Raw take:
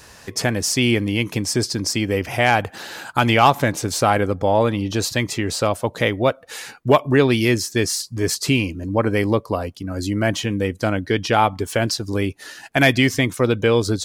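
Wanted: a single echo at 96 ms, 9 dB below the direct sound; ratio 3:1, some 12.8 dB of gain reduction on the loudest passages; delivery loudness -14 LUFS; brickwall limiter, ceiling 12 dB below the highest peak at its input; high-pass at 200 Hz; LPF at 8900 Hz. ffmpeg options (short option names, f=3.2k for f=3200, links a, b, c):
-af "highpass=200,lowpass=8.9k,acompressor=threshold=-26dB:ratio=3,alimiter=limit=-20.5dB:level=0:latency=1,aecho=1:1:96:0.355,volume=17dB"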